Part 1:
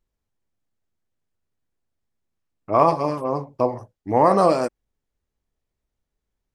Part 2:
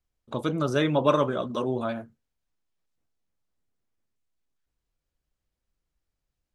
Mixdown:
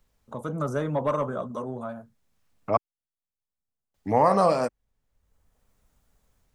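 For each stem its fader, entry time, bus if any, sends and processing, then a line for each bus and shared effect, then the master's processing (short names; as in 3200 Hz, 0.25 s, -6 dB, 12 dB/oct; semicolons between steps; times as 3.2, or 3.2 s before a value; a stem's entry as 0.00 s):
0.0 dB, 0.00 s, muted 2.77–3.94, no send, dry
-13.5 dB, 0.00 s, no send, band shelf 3100 Hz -14.5 dB; soft clip -12.5 dBFS, distortion -20 dB; AGC gain up to 16.5 dB; auto duck -23 dB, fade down 1.35 s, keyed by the first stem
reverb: off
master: bell 340 Hz -10 dB 0.36 oct; three-band squash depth 40%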